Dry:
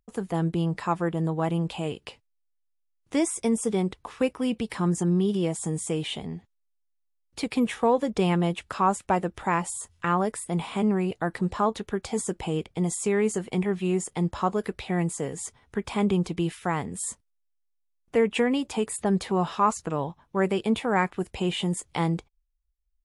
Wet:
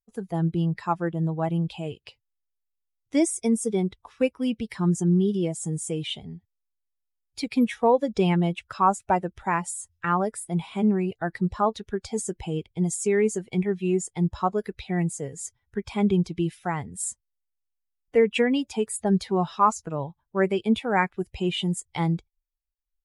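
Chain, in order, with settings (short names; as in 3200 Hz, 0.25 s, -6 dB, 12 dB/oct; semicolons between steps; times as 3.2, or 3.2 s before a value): per-bin expansion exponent 1.5; gain +4 dB; Vorbis 128 kbps 48000 Hz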